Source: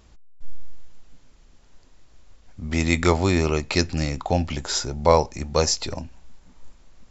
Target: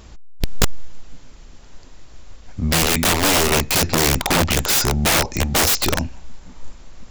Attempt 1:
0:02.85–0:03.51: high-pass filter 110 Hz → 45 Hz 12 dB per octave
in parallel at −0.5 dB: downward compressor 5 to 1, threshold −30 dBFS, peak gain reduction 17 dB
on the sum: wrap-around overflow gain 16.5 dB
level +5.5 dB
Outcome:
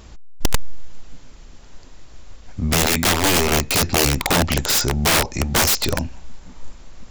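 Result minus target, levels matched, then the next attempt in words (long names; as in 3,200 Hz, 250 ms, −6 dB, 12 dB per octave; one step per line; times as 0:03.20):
downward compressor: peak gain reduction +6 dB
0:02.85–0:03.51: high-pass filter 110 Hz → 45 Hz 12 dB per octave
in parallel at −0.5 dB: downward compressor 5 to 1, threshold −22.5 dBFS, peak gain reduction 11 dB
on the sum: wrap-around overflow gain 16.5 dB
level +5.5 dB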